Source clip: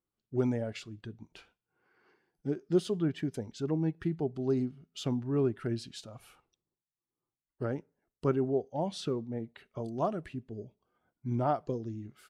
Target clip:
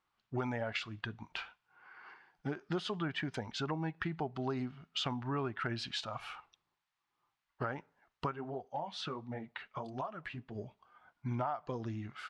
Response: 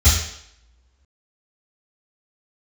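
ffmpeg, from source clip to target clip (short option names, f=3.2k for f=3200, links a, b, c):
-filter_complex "[0:a]lowpass=3.4k,lowshelf=f=630:t=q:w=1.5:g=-12.5,alimiter=level_in=5dB:limit=-24dB:level=0:latency=1:release=321,volume=-5dB,acompressor=threshold=-48dB:ratio=4,asplit=3[a][b][c];[a]afade=t=out:st=8.29:d=0.02[d];[b]flanger=delay=0.3:depth=9.6:regen=-34:speed=1.4:shape=triangular,afade=t=in:st=8.29:d=0.02,afade=t=out:st=10.54:d=0.02[e];[c]afade=t=in:st=10.54:d=0.02[f];[d][e][f]amix=inputs=3:normalize=0,volume=14dB"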